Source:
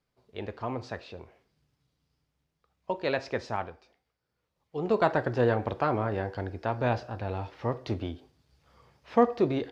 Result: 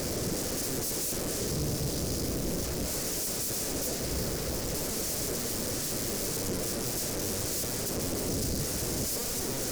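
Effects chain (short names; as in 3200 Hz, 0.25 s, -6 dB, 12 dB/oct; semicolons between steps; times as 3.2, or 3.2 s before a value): notch 770 Hz, Q 12; power-law curve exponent 0.35; high shelf 2300 Hz -6 dB; sample leveller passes 1; sine folder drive 14 dB, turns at -21.5 dBFS; band shelf 1700 Hz -14 dB 2.7 oct; gain -4 dB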